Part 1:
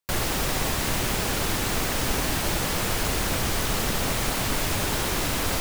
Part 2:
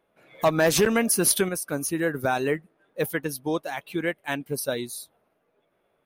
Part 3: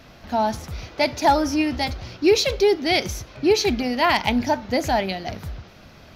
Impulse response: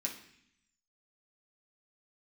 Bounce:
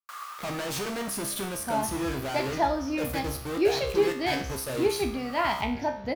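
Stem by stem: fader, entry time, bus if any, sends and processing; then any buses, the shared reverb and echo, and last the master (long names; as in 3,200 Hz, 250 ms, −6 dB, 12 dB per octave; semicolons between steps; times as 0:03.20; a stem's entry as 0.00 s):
−9.0 dB, 0.00 s, no send, high-pass with resonance 1,200 Hz, resonance Q 14; automatic ducking −15 dB, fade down 1.25 s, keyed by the second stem
−9.0 dB, 0.00 s, no send, high-shelf EQ 3,100 Hz −7 dB; fuzz pedal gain 49 dB, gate −42 dBFS
+1.5 dB, 1.35 s, no send, high-shelf EQ 3,800 Hz −9.5 dB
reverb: not used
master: tuned comb filter 67 Hz, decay 0.54 s, harmonics all, mix 80%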